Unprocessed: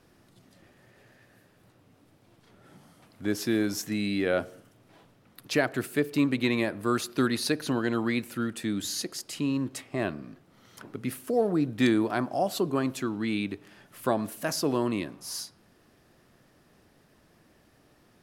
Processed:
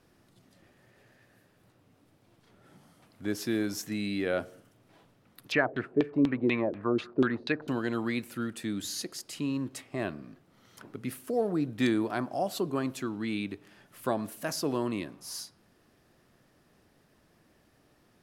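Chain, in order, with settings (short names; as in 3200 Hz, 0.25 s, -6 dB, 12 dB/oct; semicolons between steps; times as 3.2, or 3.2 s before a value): 5.52–7.68 LFO low-pass saw down 4.1 Hz 330–3400 Hz; gain -3.5 dB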